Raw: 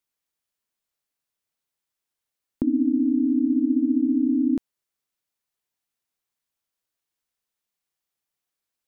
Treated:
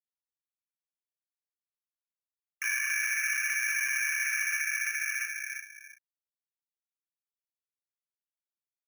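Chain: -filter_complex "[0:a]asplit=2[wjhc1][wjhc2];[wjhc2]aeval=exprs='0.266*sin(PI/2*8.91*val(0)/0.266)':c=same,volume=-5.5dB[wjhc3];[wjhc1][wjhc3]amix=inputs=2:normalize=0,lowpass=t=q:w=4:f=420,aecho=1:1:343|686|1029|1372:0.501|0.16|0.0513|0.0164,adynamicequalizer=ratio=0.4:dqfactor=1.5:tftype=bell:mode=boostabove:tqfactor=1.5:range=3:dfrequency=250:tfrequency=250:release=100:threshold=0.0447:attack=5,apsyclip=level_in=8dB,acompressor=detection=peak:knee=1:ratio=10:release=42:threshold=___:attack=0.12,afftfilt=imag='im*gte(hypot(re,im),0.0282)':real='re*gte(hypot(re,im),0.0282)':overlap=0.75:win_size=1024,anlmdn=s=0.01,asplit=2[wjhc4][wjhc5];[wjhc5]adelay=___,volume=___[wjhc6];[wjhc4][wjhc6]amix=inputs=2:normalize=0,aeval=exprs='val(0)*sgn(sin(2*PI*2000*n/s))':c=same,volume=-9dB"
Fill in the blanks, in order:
-20dB, 35, -7.5dB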